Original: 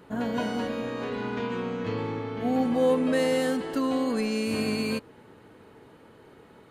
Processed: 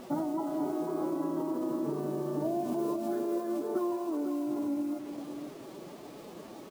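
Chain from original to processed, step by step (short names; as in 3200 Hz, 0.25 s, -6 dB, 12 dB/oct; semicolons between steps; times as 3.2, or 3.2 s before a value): careless resampling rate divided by 4×, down none, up zero stuff; compressor 16:1, threshold -26 dBFS, peak gain reduction 17.5 dB; HPF 140 Hz 12 dB/oct; vibrato 2.7 Hz 6.8 cents; Chebyshev low-pass 1000 Hz, order 3; bit-crush 10-bit; formant-preserving pitch shift +5 st; echo 0.498 s -8 dB; gain +7.5 dB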